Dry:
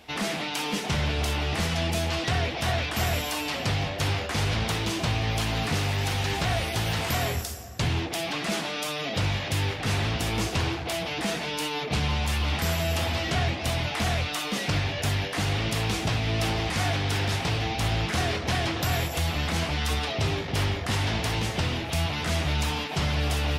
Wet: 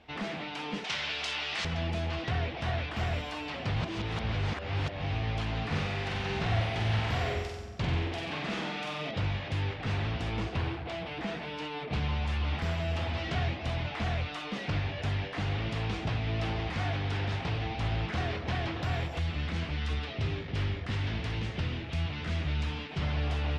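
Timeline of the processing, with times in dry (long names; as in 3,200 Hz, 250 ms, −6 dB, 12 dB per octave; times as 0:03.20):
0:00.84–0:01.65: meter weighting curve ITU-R 468
0:03.76–0:05.12: reverse
0:05.66–0:09.11: flutter between parallel walls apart 7.9 metres, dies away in 0.85 s
0:10.40–0:11.93: linearly interpolated sample-rate reduction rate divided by 3×
0:13.18–0:13.58: high-shelf EQ 4,900 Hz +5 dB
0:19.19–0:23.02: parametric band 800 Hz −6.5 dB 1.2 octaves
whole clip: low-pass filter 3,300 Hz 12 dB per octave; low-shelf EQ 110 Hz +4.5 dB; level −6.5 dB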